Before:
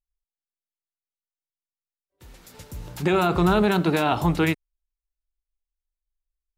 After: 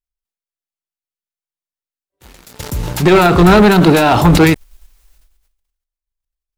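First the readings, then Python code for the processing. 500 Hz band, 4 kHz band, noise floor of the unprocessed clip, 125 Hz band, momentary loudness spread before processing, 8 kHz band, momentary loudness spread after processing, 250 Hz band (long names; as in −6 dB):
+12.0 dB, +12.0 dB, below −85 dBFS, +13.0 dB, 18 LU, +15.0 dB, 14 LU, +12.5 dB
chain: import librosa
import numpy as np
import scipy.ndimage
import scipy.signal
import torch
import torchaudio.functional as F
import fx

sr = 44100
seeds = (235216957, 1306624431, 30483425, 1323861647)

p1 = fx.level_steps(x, sr, step_db=20)
p2 = x + (p1 * 10.0 ** (0.0 / 20.0))
p3 = fx.leveller(p2, sr, passes=3)
p4 = fx.sustainer(p3, sr, db_per_s=54.0)
y = p4 * 10.0 ** (1.0 / 20.0)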